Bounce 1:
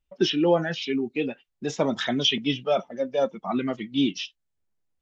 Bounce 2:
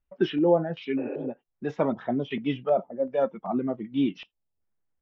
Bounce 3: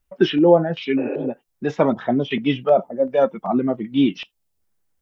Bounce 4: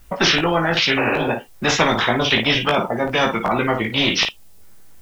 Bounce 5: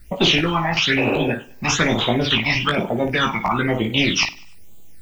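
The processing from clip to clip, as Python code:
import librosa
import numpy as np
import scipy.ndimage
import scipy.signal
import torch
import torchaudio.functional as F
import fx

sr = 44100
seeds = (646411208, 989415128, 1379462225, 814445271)

y1 = fx.spec_repair(x, sr, seeds[0], start_s=1.01, length_s=0.23, low_hz=270.0, high_hz=3000.0, source='after')
y1 = fx.filter_lfo_lowpass(y1, sr, shape='square', hz=1.3, low_hz=770.0, high_hz=1700.0, q=1.1)
y1 = y1 * librosa.db_to_amplitude(-1.5)
y2 = fx.high_shelf(y1, sr, hz=3800.0, db=7.5)
y2 = y2 * librosa.db_to_amplitude(7.5)
y3 = fx.room_early_taps(y2, sr, ms=(18, 55), db=(-4.0, -11.5))
y3 = fx.spectral_comp(y3, sr, ratio=4.0)
y3 = y3 * librosa.db_to_amplitude(-1.0)
y4 = fx.phaser_stages(y3, sr, stages=8, low_hz=430.0, high_hz=1700.0, hz=1.1, feedback_pct=25)
y4 = fx.echo_feedback(y4, sr, ms=99, feedback_pct=41, wet_db=-21.5)
y4 = y4 * librosa.db_to_amplitude(2.0)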